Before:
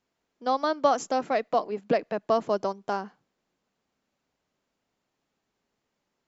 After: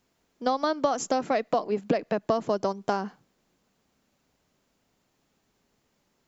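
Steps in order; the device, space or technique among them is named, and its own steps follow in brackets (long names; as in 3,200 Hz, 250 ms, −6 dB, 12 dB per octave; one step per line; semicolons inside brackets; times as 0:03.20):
ASMR close-microphone chain (low-shelf EQ 250 Hz +6.5 dB; downward compressor 6 to 1, threshold −27 dBFS, peak gain reduction 11.5 dB; high-shelf EQ 6,200 Hz +7.5 dB)
level +5.5 dB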